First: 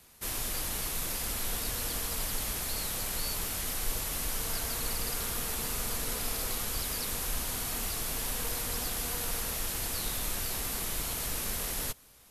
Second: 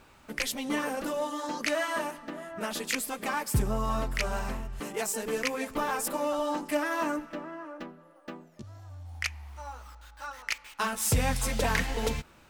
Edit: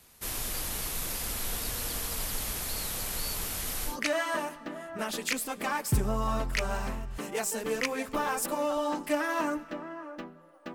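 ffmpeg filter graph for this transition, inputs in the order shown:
ffmpeg -i cue0.wav -i cue1.wav -filter_complex "[0:a]apad=whole_dur=10.74,atrim=end=10.74,atrim=end=3.98,asetpts=PTS-STARTPTS[link_01];[1:a]atrim=start=1.46:end=8.36,asetpts=PTS-STARTPTS[link_02];[link_01][link_02]acrossfade=duration=0.14:curve1=tri:curve2=tri" out.wav

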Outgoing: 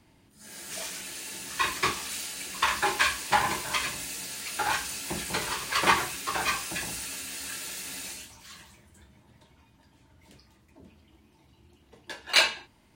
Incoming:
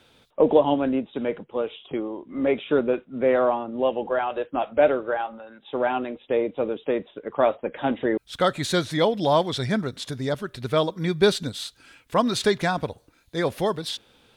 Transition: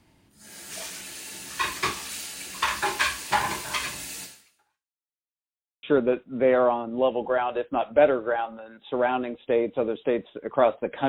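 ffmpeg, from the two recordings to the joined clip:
ffmpeg -i cue0.wav -i cue1.wav -filter_complex "[0:a]apad=whole_dur=11.08,atrim=end=11.08,asplit=2[link_01][link_02];[link_01]atrim=end=5.19,asetpts=PTS-STARTPTS,afade=type=out:start_time=4.23:duration=0.96:curve=exp[link_03];[link_02]atrim=start=5.19:end=5.83,asetpts=PTS-STARTPTS,volume=0[link_04];[1:a]atrim=start=2.64:end=7.89,asetpts=PTS-STARTPTS,afade=type=in:duration=0.004:curve=hsin[link_05];[link_03][link_04][link_05]concat=n=3:v=0:a=1" out.wav

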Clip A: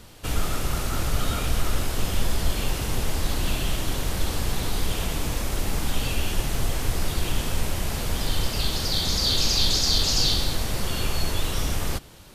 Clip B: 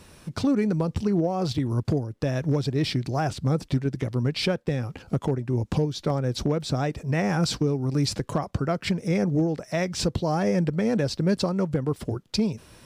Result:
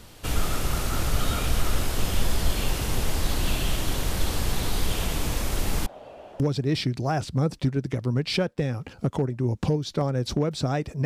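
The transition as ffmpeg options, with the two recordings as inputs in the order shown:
ffmpeg -i cue0.wav -i cue1.wav -filter_complex "[0:a]asettb=1/sr,asplit=3[link_01][link_02][link_03];[link_01]atrim=end=5.864[link_04];[link_02]atrim=start=5.86:end=6.4,asetpts=PTS-STARTPTS,afade=type=in:duration=0.004:curve=qsin,afade=type=out:start_time=0.536:duration=0.004:curve=qsin,bandpass=frequency=630:width_type=q:width=4.5:csg=0[link_05];[link_03]atrim=start=6.396[link_06];[link_04][link_05]acrossfade=duration=0.004:curve1=hsin:curve2=qsin[link_07];[link_07][link_06]acrossfade=duration=0.004:curve1=qsin:curve2=hsin,apad=whole_dur=11.05,atrim=end=11.05,atrim=end=6.402[link_08];[1:a]atrim=start=2.488:end=7.14[link_09];[link_08][link_09]acrossfade=duration=0.004:curve1=hsin:curve2=hsin" out.wav

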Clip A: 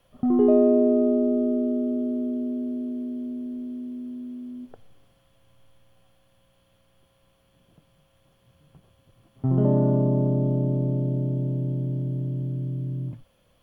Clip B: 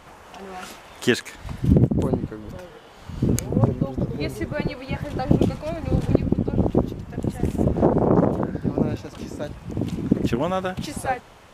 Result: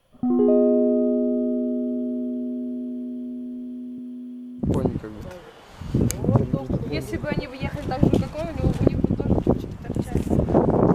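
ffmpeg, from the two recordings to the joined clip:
ffmpeg -i cue0.wav -i cue1.wav -filter_complex "[0:a]asettb=1/sr,asplit=3[link_01][link_02][link_03];[link_01]atrim=end=3.984[link_04];[link_02]atrim=start=3.98:end=4.66,asetpts=PTS-STARTPTS,afade=type=in:duration=0.004:curve=qsin,afade=type=out:start_time=0.676:duration=0.004:curve=qsin,highpass=frequency=120:width=0.5412,highpass=frequency=120:width=1.3066[link_05];[link_03]atrim=start=4.656[link_06];[link_04][link_05]acrossfade=duration=0.004:curve1=hsin:curve2=qsin[link_07];[link_07][link_06]acrossfade=duration=0.004:curve1=qsin:curve2=hsin,apad=whole_dur=10.94,atrim=end=10.94,atrim=end=4.66,asetpts=PTS-STARTPTS[link_08];[1:a]atrim=start=1.86:end=8.22,asetpts=PTS-STARTPTS[link_09];[link_08][link_09]acrossfade=duration=0.08:curve1=tri:curve2=tri" out.wav

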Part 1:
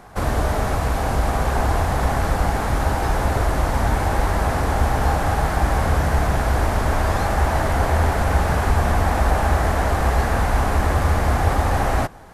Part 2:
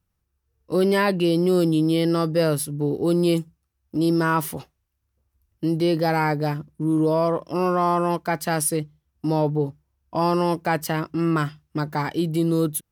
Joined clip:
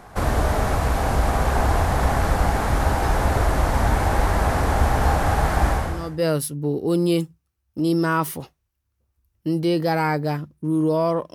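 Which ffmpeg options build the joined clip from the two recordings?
ffmpeg -i cue0.wav -i cue1.wav -filter_complex "[0:a]apad=whole_dur=11.34,atrim=end=11.34,atrim=end=6.28,asetpts=PTS-STARTPTS[link_01];[1:a]atrim=start=1.85:end=7.51,asetpts=PTS-STARTPTS[link_02];[link_01][link_02]acrossfade=duration=0.6:curve1=qua:curve2=qua" out.wav

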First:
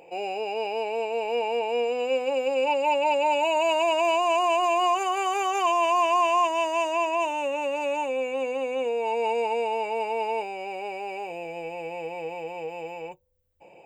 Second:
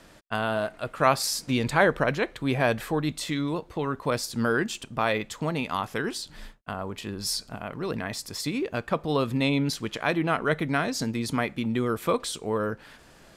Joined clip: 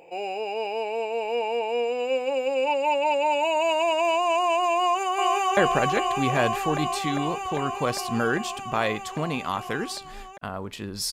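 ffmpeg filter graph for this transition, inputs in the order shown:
ffmpeg -i cue0.wav -i cue1.wav -filter_complex "[0:a]apad=whole_dur=11.12,atrim=end=11.12,atrim=end=5.572[link_01];[1:a]atrim=start=1.818:end=7.37[link_02];[link_01][link_02]acrossfade=duration=0.004:curve1=hsin:curve2=hsin,asplit=2[link_03][link_04];[link_04]afade=type=in:start_time=4.78:duration=0.01,afade=type=out:start_time=5.57:duration=0.01,aecho=0:1:400|800|1200|1600|2000|2400|2800|3200|3600|4000|4400|4800:0.749894|0.63741|0.541799|0.460529|0.391449|0.332732|0.282822|0.240399|0.204339|0.173688|0.147635|0.12549[link_05];[link_03][link_05]amix=inputs=2:normalize=0" out.wav

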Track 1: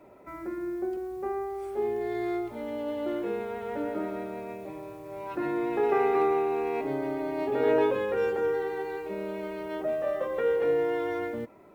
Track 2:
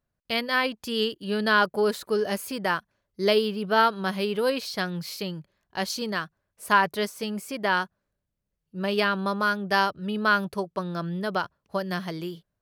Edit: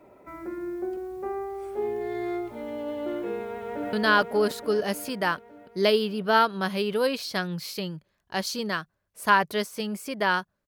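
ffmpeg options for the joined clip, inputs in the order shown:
ffmpeg -i cue0.wav -i cue1.wav -filter_complex "[0:a]apad=whole_dur=10.67,atrim=end=10.67,atrim=end=3.932[link_01];[1:a]atrim=start=1.358:end=8.1[link_02];[link_01][link_02]acrossfade=duration=0.004:curve1=hsin:curve2=hsin,asplit=2[link_03][link_04];[link_04]afade=type=in:start_time=3.53:duration=0.01,afade=type=out:start_time=3.93:duration=0.01,aecho=0:1:290|580|870|1160|1450|1740|2030|2320|2610|2900|3190|3480:0.841395|0.588977|0.412284|0.288599|0.202019|0.141413|0.0989893|0.0692925|0.0485048|0.0339533|0.0237673|0.0166371[link_05];[link_03][link_05]amix=inputs=2:normalize=0" out.wav

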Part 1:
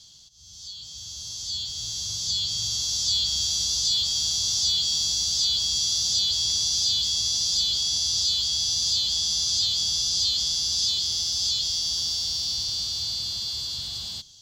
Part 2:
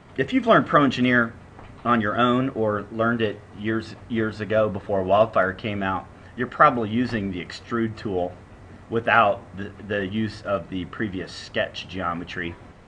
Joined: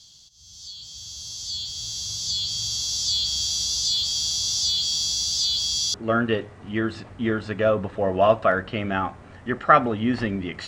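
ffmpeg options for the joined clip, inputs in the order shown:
ffmpeg -i cue0.wav -i cue1.wav -filter_complex "[0:a]apad=whole_dur=10.67,atrim=end=10.67,atrim=end=5.942[link_01];[1:a]atrim=start=2.848:end=7.58[link_02];[link_01][link_02]acrossfade=duration=0.004:curve1=hsin:curve2=hsin" out.wav

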